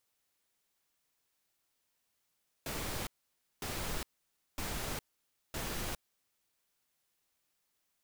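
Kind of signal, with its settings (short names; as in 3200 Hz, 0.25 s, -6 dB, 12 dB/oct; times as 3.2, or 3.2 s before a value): noise bursts pink, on 0.41 s, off 0.55 s, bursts 4, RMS -38 dBFS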